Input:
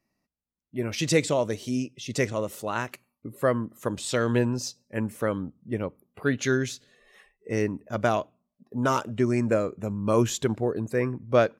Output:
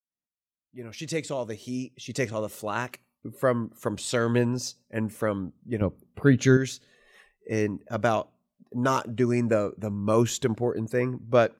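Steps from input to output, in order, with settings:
fade in at the beginning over 2.84 s
0:05.81–0:06.57: low-shelf EQ 310 Hz +11.5 dB

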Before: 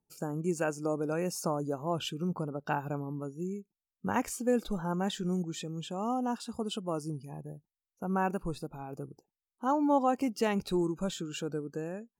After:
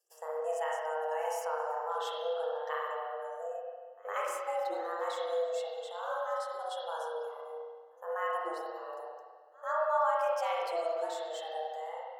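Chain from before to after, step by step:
backwards echo 111 ms −23.5 dB
spring reverb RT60 1.6 s, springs 33/59 ms, chirp 70 ms, DRR −4 dB
frequency shifter +320 Hz
level −8 dB

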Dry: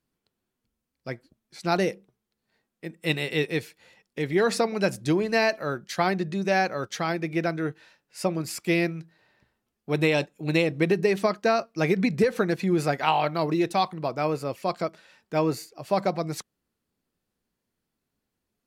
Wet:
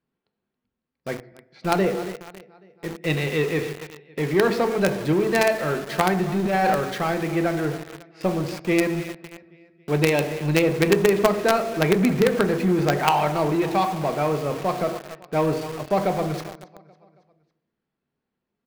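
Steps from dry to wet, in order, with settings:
low-shelf EQ 99 Hz −11 dB
repeating echo 276 ms, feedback 53%, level −18 dB
on a send at −8 dB: convolution reverb RT60 0.85 s, pre-delay 3 ms
0:06.40–0:06.81: on the sum: transient designer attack −11 dB, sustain +12 dB
high-frequency loss of the air 270 metres
in parallel at −8 dB: log-companded quantiser 2 bits
on the sum: level +1.5 dB

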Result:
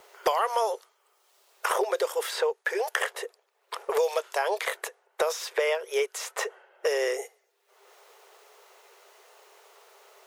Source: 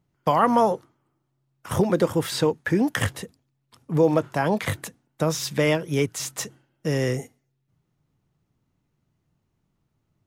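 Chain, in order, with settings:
linear-phase brick-wall high-pass 380 Hz
multiband upward and downward compressor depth 100%
level −2.5 dB

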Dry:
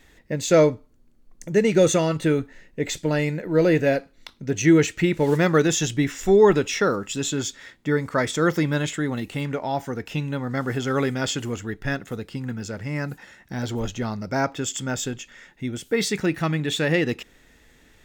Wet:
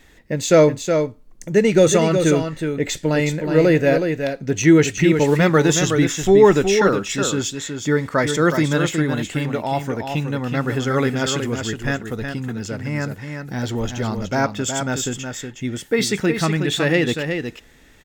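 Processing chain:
single-tap delay 368 ms −6.5 dB
level +3.5 dB

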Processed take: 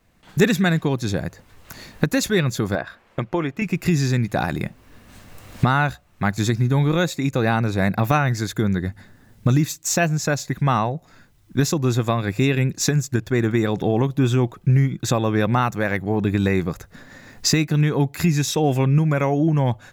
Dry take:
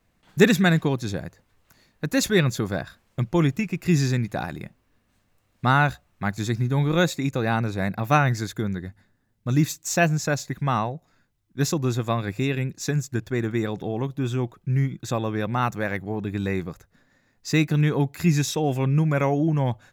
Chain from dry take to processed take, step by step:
camcorder AGC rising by 13 dB per second
0:02.75–0:03.62: bass and treble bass −12 dB, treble −15 dB
in parallel at +2.5 dB: downward compressor, threshold −32 dBFS, peak gain reduction 20.5 dB
on the sum: level −2 dB

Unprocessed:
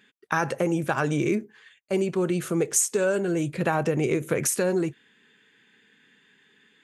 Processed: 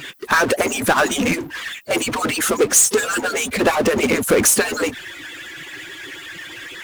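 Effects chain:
harmonic-percussive split with one part muted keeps percussive
power curve on the samples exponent 0.5
level +4 dB

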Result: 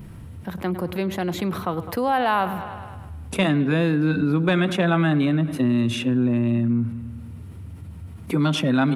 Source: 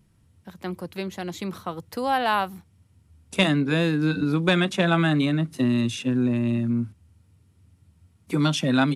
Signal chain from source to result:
parametric band 6,400 Hz −11.5 dB 1.8 octaves
delay with a low-pass on its return 103 ms, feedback 54%, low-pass 4,000 Hz, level −18.5 dB
envelope flattener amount 50%

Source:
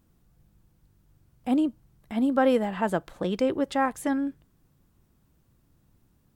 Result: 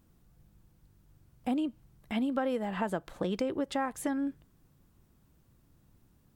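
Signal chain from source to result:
0:01.56–0:02.40: dynamic equaliser 2,700 Hz, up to +7 dB, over −56 dBFS, Q 1.4
downward compressor 6 to 1, threshold −28 dBFS, peak gain reduction 11 dB

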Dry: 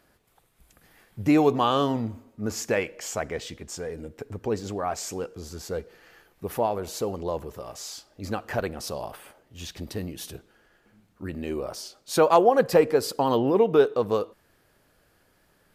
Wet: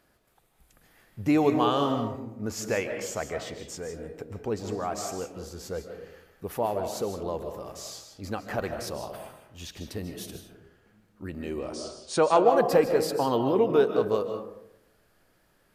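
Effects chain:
0:11.59–0:12.47: linear-phase brick-wall low-pass 9,800 Hz
convolution reverb RT60 0.80 s, pre-delay 110 ms, DRR 6 dB
level −3 dB

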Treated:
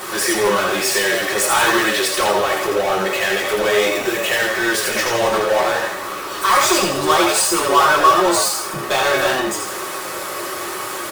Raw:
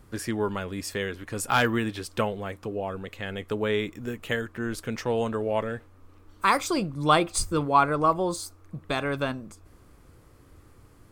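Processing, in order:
high-pass filter 600 Hz 12 dB per octave
power curve on the samples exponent 0.35
echo with shifted repeats 82 ms, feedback 49%, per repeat +94 Hz, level −3.5 dB
convolution reverb RT60 0.25 s, pre-delay 3 ms, DRR −2 dB
level −5.5 dB

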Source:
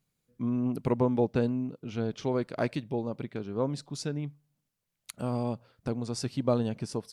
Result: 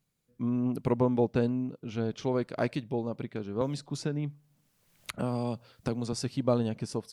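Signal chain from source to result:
0:03.61–0:06.13: multiband upward and downward compressor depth 70%

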